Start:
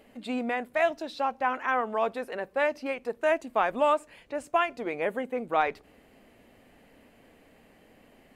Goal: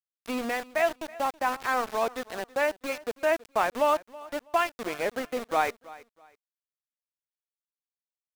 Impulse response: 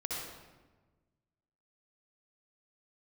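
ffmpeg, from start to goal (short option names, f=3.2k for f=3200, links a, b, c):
-af "aeval=exprs='val(0)*gte(abs(val(0)),0.0251)':c=same,aecho=1:1:325|650:0.1|0.026"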